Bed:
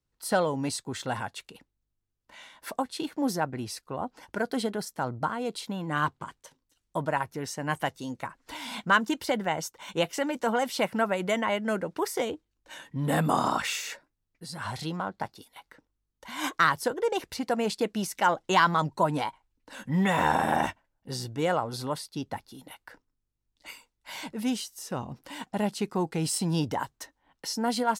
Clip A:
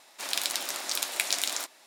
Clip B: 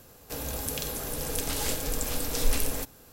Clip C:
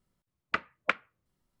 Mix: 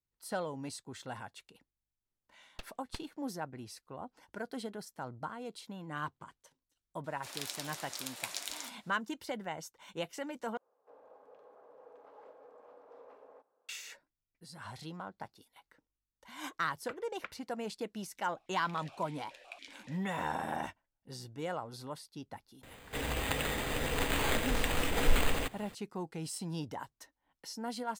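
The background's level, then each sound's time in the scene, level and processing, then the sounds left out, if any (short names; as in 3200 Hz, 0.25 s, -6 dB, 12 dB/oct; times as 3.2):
bed -11.5 dB
2.05 add C -15.5 dB + full-wave rectifier
7.04 add A -11.5 dB
10.57 replace with B -16 dB + Chebyshev band-pass 480–1100 Hz
16.35 add C -17 dB
18.32 add A -6 dB + vowel sequencer 7.1 Hz
22.63 add B -1 dB + careless resampling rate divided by 8×, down none, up hold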